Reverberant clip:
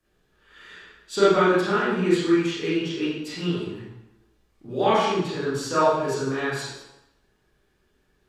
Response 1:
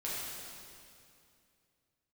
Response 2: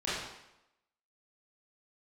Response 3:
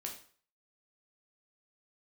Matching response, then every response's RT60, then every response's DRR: 2; 2.5, 0.90, 0.45 s; -8.0, -10.5, 0.0 dB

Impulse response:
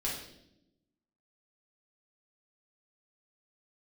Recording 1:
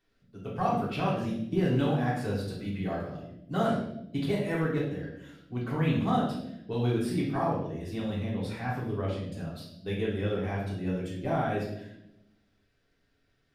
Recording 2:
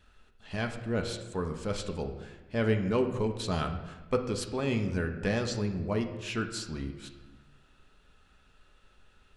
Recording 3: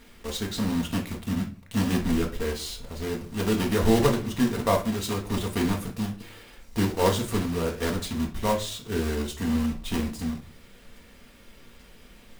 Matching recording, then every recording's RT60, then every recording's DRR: 1; 0.80, 1.3, 0.45 s; -5.5, 4.5, 1.5 dB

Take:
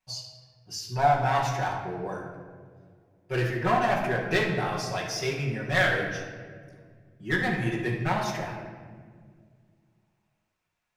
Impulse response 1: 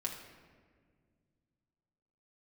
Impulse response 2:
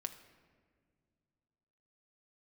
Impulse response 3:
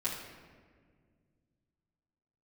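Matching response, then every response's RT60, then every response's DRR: 3; 1.8 s, not exponential, 1.8 s; -1.5, 6.5, -8.5 dB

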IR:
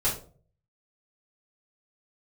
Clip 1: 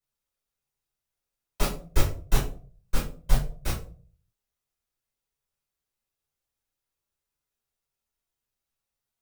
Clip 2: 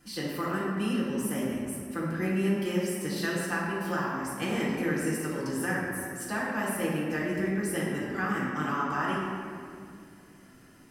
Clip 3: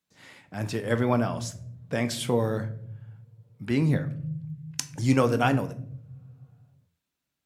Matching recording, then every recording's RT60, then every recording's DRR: 1; 0.45 s, 2.2 s, not exponential; -8.0, -10.0, 9.5 dB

